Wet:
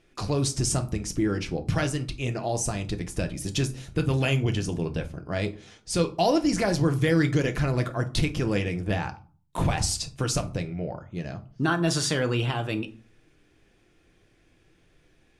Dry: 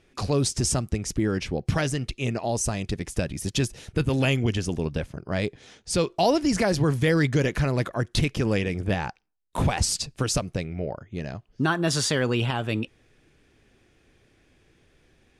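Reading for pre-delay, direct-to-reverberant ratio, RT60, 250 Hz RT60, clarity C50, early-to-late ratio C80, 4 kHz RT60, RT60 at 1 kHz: 3 ms, 6.0 dB, 0.40 s, 0.55 s, 16.5 dB, 21.5 dB, 0.25 s, 0.40 s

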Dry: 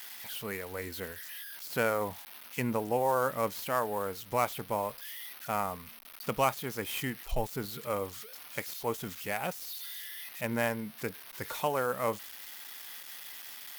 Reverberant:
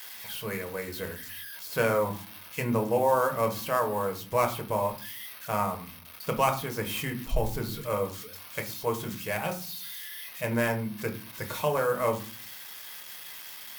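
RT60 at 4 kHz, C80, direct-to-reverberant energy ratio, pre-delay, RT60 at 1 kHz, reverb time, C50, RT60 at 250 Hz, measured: 0.20 s, 18.5 dB, 4.0 dB, 6 ms, 0.45 s, 0.45 s, 13.5 dB, 0.70 s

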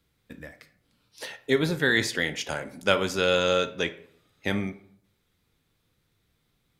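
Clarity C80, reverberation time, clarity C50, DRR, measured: 18.5 dB, 0.65 s, 14.5 dB, 10.5 dB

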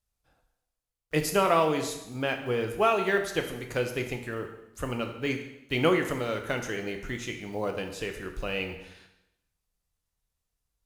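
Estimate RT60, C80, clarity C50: 0.90 s, 10.5 dB, 8.0 dB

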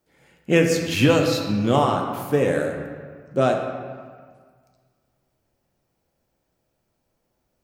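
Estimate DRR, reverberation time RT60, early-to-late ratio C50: 2.0 dB, 1.7 s, 4.5 dB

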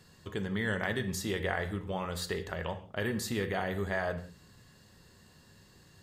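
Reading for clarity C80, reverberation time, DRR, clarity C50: 15.0 dB, no single decay rate, 7.5 dB, 12.5 dB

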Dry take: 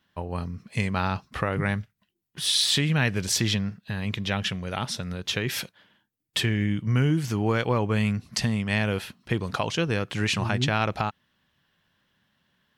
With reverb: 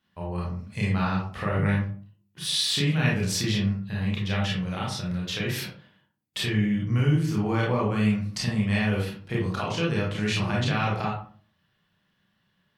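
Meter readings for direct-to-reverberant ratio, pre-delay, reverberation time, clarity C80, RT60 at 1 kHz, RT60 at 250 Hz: -4.5 dB, 26 ms, 0.45 s, 8.5 dB, 0.40 s, 0.55 s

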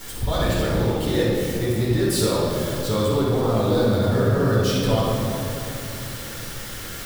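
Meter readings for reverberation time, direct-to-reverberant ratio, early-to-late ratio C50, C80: 2.9 s, -8.5 dB, -3.5 dB, -0.5 dB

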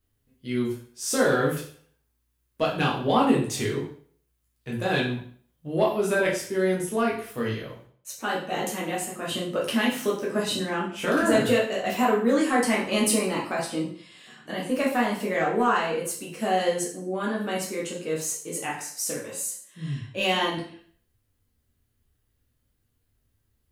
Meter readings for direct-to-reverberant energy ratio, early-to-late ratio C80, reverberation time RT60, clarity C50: -4.5 dB, 9.5 dB, 0.50 s, 6.0 dB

